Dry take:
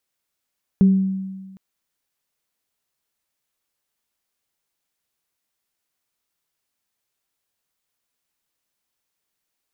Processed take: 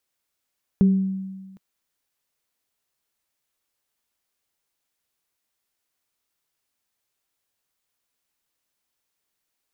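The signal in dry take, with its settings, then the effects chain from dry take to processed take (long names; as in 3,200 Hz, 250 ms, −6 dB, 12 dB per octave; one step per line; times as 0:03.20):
inharmonic partials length 0.76 s, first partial 191 Hz, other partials 394 Hz, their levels −16.5 dB, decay 1.42 s, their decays 0.50 s, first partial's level −8.5 dB
parametric band 180 Hz −3.5 dB 0.37 octaves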